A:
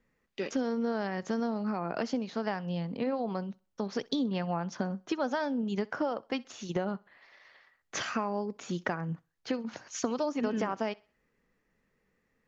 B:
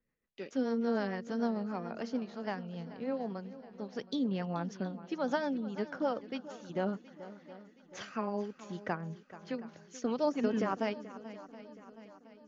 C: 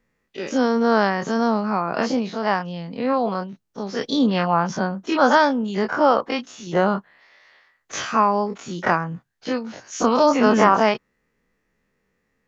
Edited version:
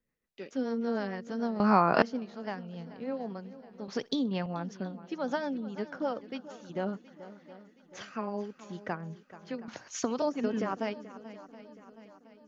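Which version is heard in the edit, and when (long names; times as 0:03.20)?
B
0:01.60–0:02.02: punch in from C
0:03.88–0:04.46: punch in from A
0:09.68–0:10.22: punch in from A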